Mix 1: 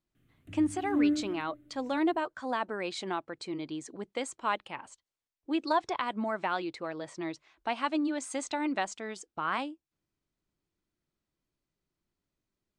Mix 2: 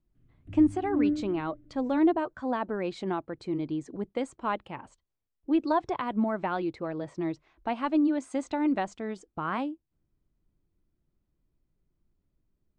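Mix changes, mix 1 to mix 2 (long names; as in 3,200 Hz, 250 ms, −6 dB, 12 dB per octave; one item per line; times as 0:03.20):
background −6.0 dB
master: add spectral tilt −3.5 dB per octave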